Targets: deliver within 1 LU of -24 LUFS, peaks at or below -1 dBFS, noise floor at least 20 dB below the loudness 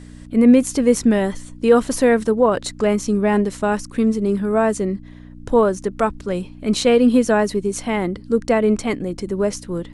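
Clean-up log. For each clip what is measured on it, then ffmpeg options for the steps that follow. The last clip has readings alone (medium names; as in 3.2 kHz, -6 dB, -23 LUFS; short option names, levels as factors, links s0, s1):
hum 60 Hz; highest harmonic 300 Hz; hum level -38 dBFS; loudness -18.5 LUFS; peak level -2.5 dBFS; loudness target -24.0 LUFS
-> -af "bandreject=f=60:t=h:w=4,bandreject=f=120:t=h:w=4,bandreject=f=180:t=h:w=4,bandreject=f=240:t=h:w=4,bandreject=f=300:t=h:w=4"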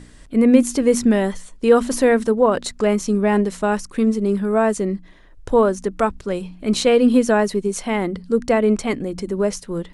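hum not found; loudness -19.0 LUFS; peak level -2.0 dBFS; loudness target -24.0 LUFS
-> -af "volume=0.562"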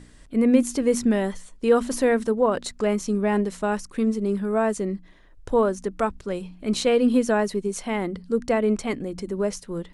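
loudness -24.0 LUFS; peak level -7.0 dBFS; noise floor -50 dBFS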